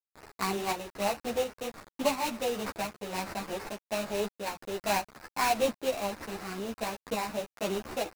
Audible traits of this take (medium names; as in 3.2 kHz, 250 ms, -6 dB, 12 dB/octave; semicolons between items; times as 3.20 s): a quantiser's noise floor 6-bit, dither none; tremolo saw up 1.4 Hz, depth 55%; aliases and images of a low sample rate 3.3 kHz, jitter 20%; a shimmering, thickened sound